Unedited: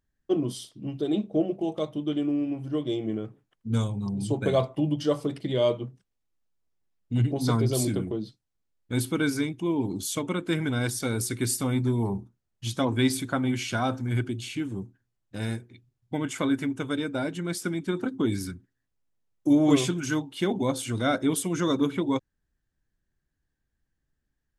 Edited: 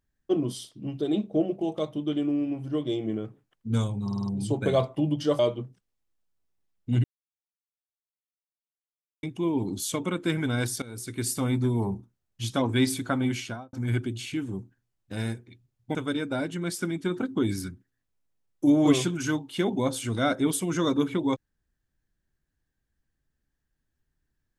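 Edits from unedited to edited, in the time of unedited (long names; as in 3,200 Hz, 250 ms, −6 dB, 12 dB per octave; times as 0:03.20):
0:04.04: stutter 0.05 s, 5 plays
0:05.19–0:05.62: remove
0:07.27–0:09.46: silence
0:11.05–0:11.65: fade in, from −19.5 dB
0:13.55–0:13.96: fade out and dull
0:16.18–0:16.78: remove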